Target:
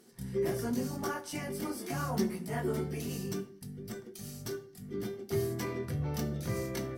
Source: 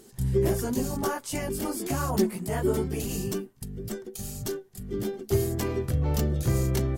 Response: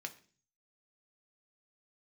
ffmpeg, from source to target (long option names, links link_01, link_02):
-filter_complex "[1:a]atrim=start_sample=2205,asetrate=37926,aresample=44100[link_01];[0:a][link_01]afir=irnorm=-1:irlink=0,volume=-4dB"